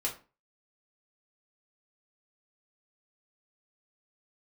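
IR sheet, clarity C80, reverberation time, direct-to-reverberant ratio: 16.5 dB, 0.35 s, -3.0 dB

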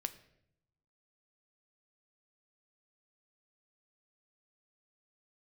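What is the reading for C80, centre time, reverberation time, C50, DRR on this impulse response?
17.5 dB, 6 ms, 0.75 s, 15.0 dB, 9.5 dB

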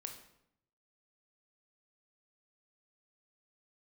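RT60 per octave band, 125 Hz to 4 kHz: 1.1, 0.90, 0.75, 0.70, 0.65, 0.55 s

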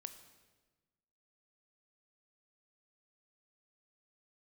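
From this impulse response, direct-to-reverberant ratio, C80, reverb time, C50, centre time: 9.5 dB, 12.5 dB, 1.3 s, 11.0 dB, 12 ms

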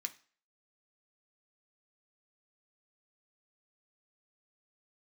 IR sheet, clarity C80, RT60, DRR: 22.0 dB, 0.40 s, 5.5 dB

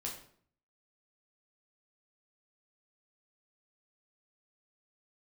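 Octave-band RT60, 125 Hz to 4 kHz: 0.75, 0.65, 0.60, 0.55, 0.45, 0.45 s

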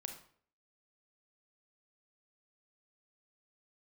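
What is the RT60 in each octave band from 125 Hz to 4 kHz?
0.55, 0.55, 0.55, 0.50, 0.45, 0.40 s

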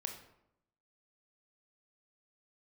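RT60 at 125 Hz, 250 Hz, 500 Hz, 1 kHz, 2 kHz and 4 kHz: 0.90, 0.95, 0.80, 0.80, 0.60, 0.50 s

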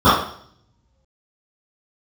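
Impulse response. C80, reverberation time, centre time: 6.5 dB, 0.60 s, 53 ms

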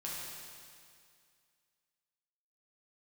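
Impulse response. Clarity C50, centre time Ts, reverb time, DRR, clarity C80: -2.0 dB, 0.134 s, 2.2 s, -6.0 dB, 0.0 dB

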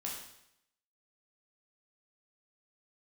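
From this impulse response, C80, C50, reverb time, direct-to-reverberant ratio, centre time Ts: 6.0 dB, 3.0 dB, 0.75 s, -3.5 dB, 45 ms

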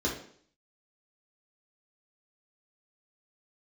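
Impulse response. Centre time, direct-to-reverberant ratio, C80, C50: 32 ms, -4.0 dB, 10.5 dB, 6.0 dB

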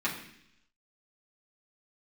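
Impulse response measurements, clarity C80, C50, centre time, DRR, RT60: 10.0 dB, 7.5 dB, 26 ms, -7.0 dB, 0.70 s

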